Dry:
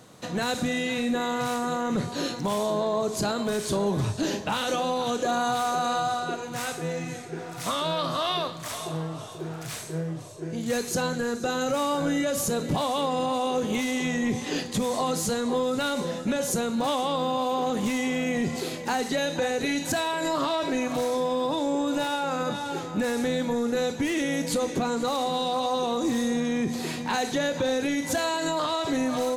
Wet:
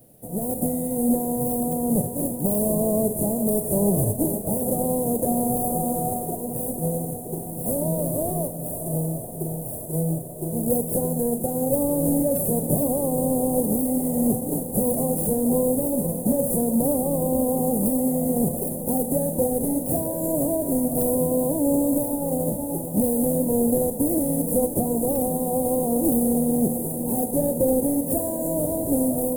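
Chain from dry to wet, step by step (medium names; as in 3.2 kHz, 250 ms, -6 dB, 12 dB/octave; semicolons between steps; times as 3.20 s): formants flattened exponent 0.3; level rider gain up to 5 dB; in parallel at -6 dB: decimation with a swept rate 10×, swing 60% 0.77 Hz; on the sum: elliptic band-stop 610–9900 Hz, stop band 40 dB; bit crusher 11-bit; on a send: echo that smears into a reverb 882 ms, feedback 71%, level -14 dB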